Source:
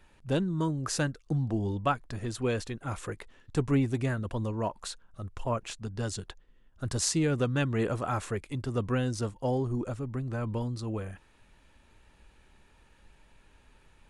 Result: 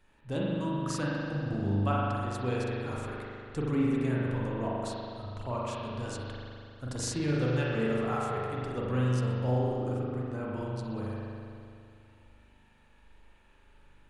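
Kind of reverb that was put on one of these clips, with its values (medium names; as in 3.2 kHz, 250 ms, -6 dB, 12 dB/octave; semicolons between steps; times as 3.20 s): spring tank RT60 2.5 s, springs 40 ms, chirp 25 ms, DRR -5.5 dB; trim -7 dB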